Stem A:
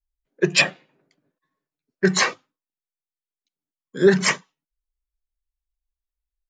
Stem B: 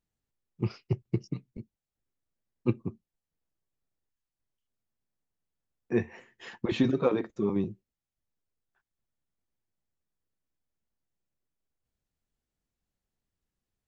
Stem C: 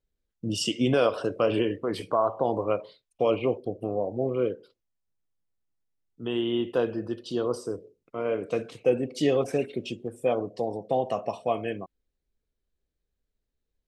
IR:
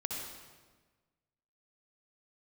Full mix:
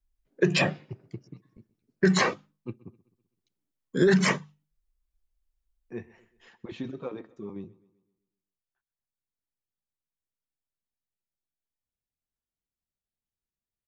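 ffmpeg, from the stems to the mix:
-filter_complex "[0:a]lowshelf=frequency=410:gain=9,bandreject=frequency=50:width_type=h:width=6,bandreject=frequency=100:width_type=h:width=6,bandreject=frequency=150:width_type=h:width=6,bandreject=frequency=200:width_type=h:width=6,alimiter=limit=-7.5dB:level=0:latency=1:release=30,volume=-0.5dB[link_01];[1:a]volume=-11dB,asplit=2[link_02][link_03];[link_03]volume=-21.5dB,aecho=0:1:128|256|384|512|640|768|896:1|0.47|0.221|0.104|0.0488|0.0229|0.0108[link_04];[link_01][link_02][link_04]amix=inputs=3:normalize=0,acrossover=split=1100|3600[link_05][link_06][link_07];[link_05]acompressor=threshold=-18dB:ratio=4[link_08];[link_06]acompressor=threshold=-26dB:ratio=4[link_09];[link_07]acompressor=threshold=-35dB:ratio=4[link_10];[link_08][link_09][link_10]amix=inputs=3:normalize=0"

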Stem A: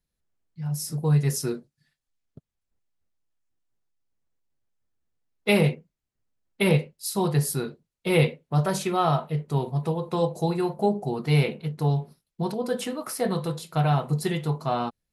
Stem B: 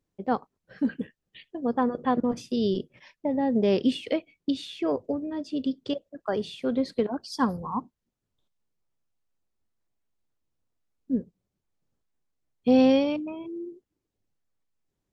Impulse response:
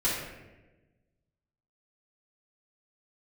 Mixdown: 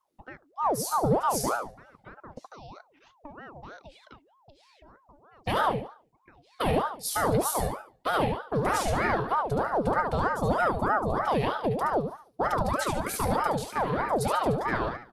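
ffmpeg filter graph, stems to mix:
-filter_complex "[0:a]lowshelf=frequency=420:gain=5.5,acontrast=53,alimiter=limit=-13.5dB:level=0:latency=1:release=28,volume=-4dB,asplit=3[link_01][link_02][link_03];[link_02]volume=-5dB[link_04];[1:a]highpass=350,acompressor=threshold=-35dB:ratio=4,volume=-5dB,afade=type=out:start_time=3.58:duration=0.75:silence=0.298538[link_05];[link_03]apad=whole_len=667146[link_06];[link_05][link_06]sidechaincompress=threshold=-39dB:ratio=3:attack=6.4:release=571[link_07];[link_04]aecho=0:1:72|144|216|288|360:1|0.32|0.102|0.0328|0.0105[link_08];[link_01][link_07][link_08]amix=inputs=3:normalize=0,bandreject=frequency=3600:width=16,aeval=exprs='val(0)*sin(2*PI*680*n/s+680*0.6/3.2*sin(2*PI*3.2*n/s))':channel_layout=same"

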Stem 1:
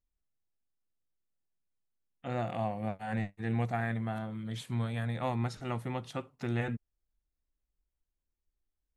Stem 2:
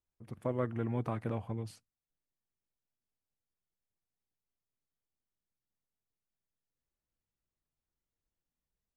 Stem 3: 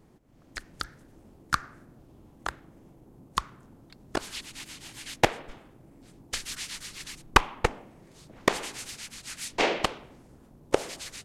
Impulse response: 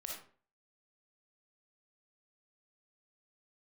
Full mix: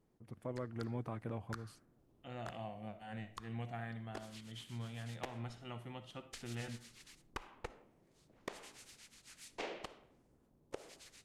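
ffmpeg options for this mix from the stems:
-filter_complex "[0:a]equalizer=frequency=3000:width_type=o:width=0.27:gain=12.5,volume=-15dB,asplit=2[link_01][link_02];[link_02]volume=-4dB[link_03];[1:a]volume=-5.5dB[link_04];[2:a]equalizer=frequency=460:width=1.5:gain=2.5,volume=-19dB,asplit=2[link_05][link_06];[link_06]volume=-12dB[link_07];[3:a]atrim=start_sample=2205[link_08];[link_03][link_07]amix=inputs=2:normalize=0[link_09];[link_09][link_08]afir=irnorm=-1:irlink=0[link_10];[link_01][link_04][link_05][link_10]amix=inputs=4:normalize=0,alimiter=level_in=5.5dB:limit=-24dB:level=0:latency=1:release=180,volume=-5.5dB"

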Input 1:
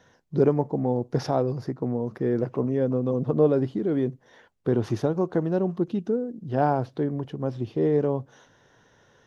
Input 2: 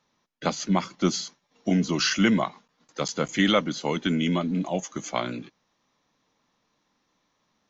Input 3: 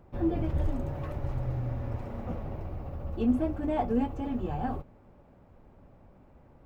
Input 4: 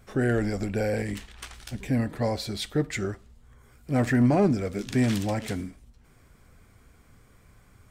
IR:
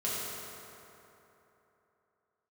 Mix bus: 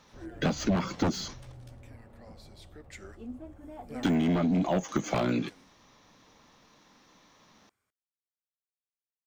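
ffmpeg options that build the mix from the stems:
-filter_complex "[1:a]aeval=exprs='0.376*sin(PI/2*3.98*val(0)/0.376)':channel_layout=same,deesser=0.85,volume=-4dB,asplit=3[link_01][link_02][link_03];[link_01]atrim=end=1.52,asetpts=PTS-STARTPTS,afade=type=out:start_time=1.516:duration=0.004:curve=hsin[link_04];[link_02]atrim=start=1.52:end=4.03,asetpts=PTS-STARTPTS,volume=0[link_05];[link_03]atrim=start=4.03,asetpts=PTS-STARTPTS,afade=type=in:duration=0.004:curve=hsin[link_06];[link_04][link_05][link_06]concat=n=3:v=0:a=1[link_07];[2:a]volume=-16dB[link_08];[3:a]highpass=frequency=680:poles=1,acompressor=threshold=-36dB:ratio=2,volume=-7dB,afade=type=in:start_time=2.64:duration=0.56:silence=0.266073,afade=type=out:start_time=4.63:duration=0.33:silence=0.266073[link_09];[link_07][link_08][link_09]amix=inputs=3:normalize=0,acompressor=threshold=-24dB:ratio=6"

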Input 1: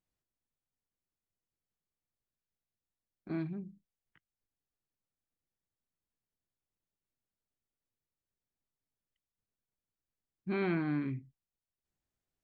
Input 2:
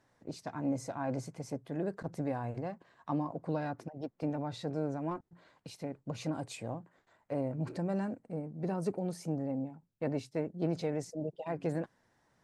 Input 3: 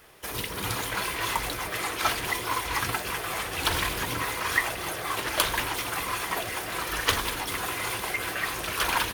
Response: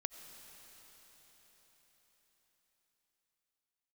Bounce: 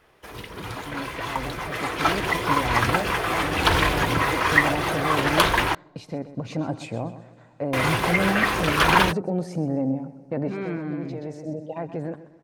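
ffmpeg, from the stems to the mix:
-filter_complex "[0:a]volume=-11dB,asplit=2[link_01][link_02];[1:a]alimiter=level_in=5dB:limit=-24dB:level=0:latency=1:release=129,volume=-5dB,adelay=300,volume=-2dB,asplit=3[link_03][link_04][link_05];[link_04]volume=-13.5dB[link_06];[link_05]volume=-12dB[link_07];[2:a]volume=-2.5dB,asplit=3[link_08][link_09][link_10];[link_08]atrim=end=5.75,asetpts=PTS-STARTPTS,afade=type=out:start_time=5.746:duration=0.004:curve=hsin[link_11];[link_09]atrim=start=5.75:end=7.73,asetpts=PTS-STARTPTS,volume=0[link_12];[link_10]atrim=start=7.73,asetpts=PTS-STARTPTS,afade=type=in:duration=0.004:curve=hsin[link_13];[link_11][link_12][link_13]concat=n=3:v=0:a=1[link_14];[link_02]apad=whole_len=561618[link_15];[link_03][link_15]sidechaincompress=threshold=-52dB:ratio=8:attack=16:release=1050[link_16];[3:a]atrim=start_sample=2205[link_17];[link_06][link_17]afir=irnorm=-1:irlink=0[link_18];[link_07]aecho=0:1:127|254|381|508|635|762:1|0.4|0.16|0.064|0.0256|0.0102[link_19];[link_01][link_16][link_14][link_18][link_19]amix=inputs=5:normalize=0,lowpass=frequency=2200:poles=1,dynaudnorm=framelen=450:gausssize=9:maxgain=14dB"

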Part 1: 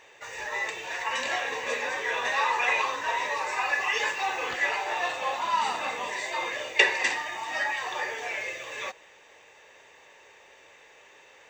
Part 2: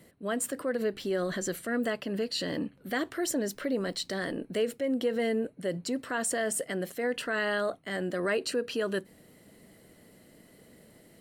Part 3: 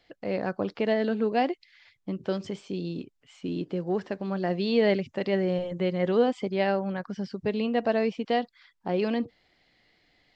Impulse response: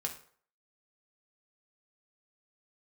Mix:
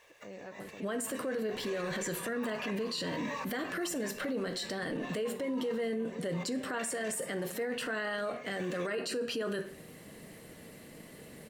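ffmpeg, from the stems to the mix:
-filter_complex "[0:a]acrusher=bits=8:mix=0:aa=0.5,aecho=1:1:1.8:0.41,volume=-9dB[link_01];[1:a]adelay=600,volume=2dB,asplit=2[link_02][link_03];[link_03]volume=-6dB[link_04];[2:a]acompressor=threshold=-26dB:ratio=6,volume=-16dB,asplit=3[link_05][link_06][link_07];[link_06]volume=-4.5dB[link_08];[link_07]apad=whole_len=507038[link_09];[link_01][link_09]sidechaincompress=threshold=-55dB:ratio=10:attack=8.5:release=206[link_10];[link_02][link_05]amix=inputs=2:normalize=0,acompressor=threshold=-34dB:ratio=6,volume=0dB[link_11];[3:a]atrim=start_sample=2205[link_12];[link_04][link_12]afir=irnorm=-1:irlink=0[link_13];[link_08]aecho=0:1:141:1[link_14];[link_10][link_11][link_13][link_14]amix=inputs=4:normalize=0,alimiter=level_in=3.5dB:limit=-24dB:level=0:latency=1:release=16,volume=-3.5dB"

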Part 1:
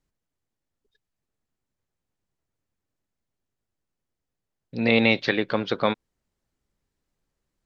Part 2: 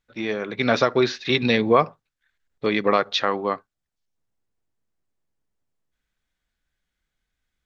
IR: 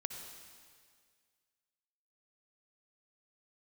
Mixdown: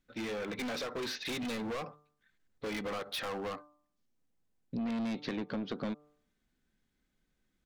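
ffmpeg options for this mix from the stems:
-filter_complex "[0:a]equalizer=frequency=230:width=0.89:gain=13.5,asoftclip=type=tanh:threshold=-15dB,volume=-8dB[link_01];[1:a]aecho=1:1:3.9:0.31,acompressor=threshold=-21dB:ratio=4,asoftclip=type=hard:threshold=-30.5dB,volume=-3dB[link_02];[link_01][link_02]amix=inputs=2:normalize=0,bandreject=frequency=148.5:width_type=h:width=4,bandreject=frequency=297:width_type=h:width=4,bandreject=frequency=445.5:width_type=h:width=4,bandreject=frequency=594:width_type=h:width=4,bandreject=frequency=742.5:width_type=h:width=4,bandreject=frequency=891:width_type=h:width=4,bandreject=frequency=1039.5:width_type=h:width=4,bandreject=frequency=1188:width_type=h:width=4,bandreject=frequency=1336.5:width_type=h:width=4,acompressor=threshold=-34dB:ratio=6"

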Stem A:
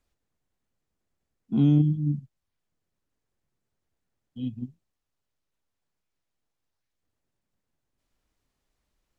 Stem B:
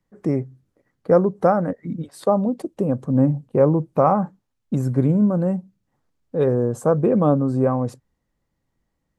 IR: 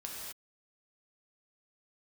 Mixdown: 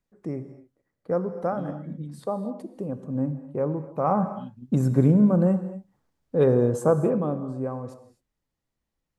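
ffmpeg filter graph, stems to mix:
-filter_complex "[0:a]acompressor=threshold=-27dB:ratio=6,volume=-8.5dB[link_01];[1:a]volume=-2.5dB,afade=type=in:start_time=4:duration=0.27:silence=0.316228,afade=type=out:start_time=6.76:duration=0.52:silence=0.281838,asplit=2[link_02][link_03];[link_03]volume=-6dB[link_04];[2:a]atrim=start_sample=2205[link_05];[link_04][link_05]afir=irnorm=-1:irlink=0[link_06];[link_01][link_02][link_06]amix=inputs=3:normalize=0"

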